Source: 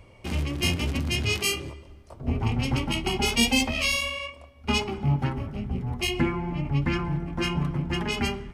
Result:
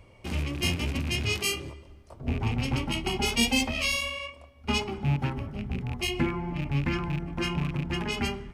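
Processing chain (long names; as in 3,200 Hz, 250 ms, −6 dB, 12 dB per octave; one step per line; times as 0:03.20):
loose part that buzzes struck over −26 dBFS, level −26 dBFS
level −2.5 dB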